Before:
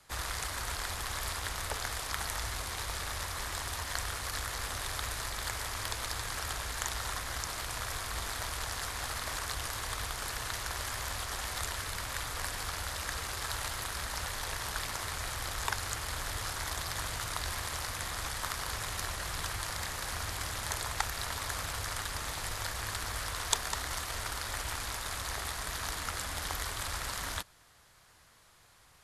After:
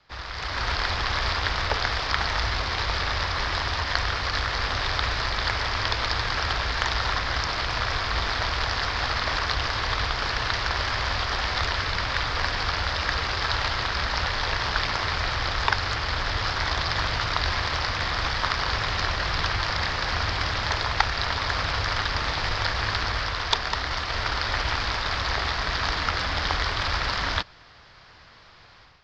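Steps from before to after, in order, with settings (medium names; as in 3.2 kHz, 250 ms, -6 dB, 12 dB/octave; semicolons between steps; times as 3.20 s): elliptic low-pass 5.1 kHz, stop band 60 dB; level rider gain up to 11.5 dB; trim +1 dB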